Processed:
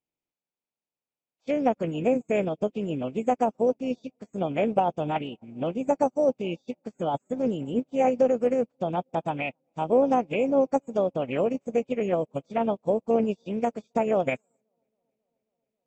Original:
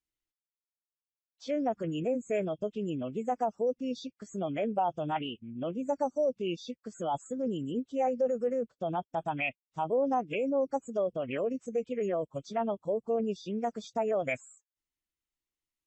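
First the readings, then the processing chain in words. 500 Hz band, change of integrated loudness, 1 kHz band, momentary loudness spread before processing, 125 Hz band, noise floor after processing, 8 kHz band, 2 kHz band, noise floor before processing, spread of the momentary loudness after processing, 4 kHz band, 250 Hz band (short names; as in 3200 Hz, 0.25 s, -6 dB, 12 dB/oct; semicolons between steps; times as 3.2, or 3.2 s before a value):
+6.0 dB, +6.0 dB, +5.0 dB, 6 LU, +6.0 dB, under -85 dBFS, n/a, +3.0 dB, under -85 dBFS, 9 LU, +1.0 dB, +6.5 dB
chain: per-bin compression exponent 0.6; low shelf 240 Hz +8 dB; on a send: dark delay 0.27 s, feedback 80%, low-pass 1200 Hz, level -23 dB; on the sum: upward expander 2.5:1, over -45 dBFS; gain +5.5 dB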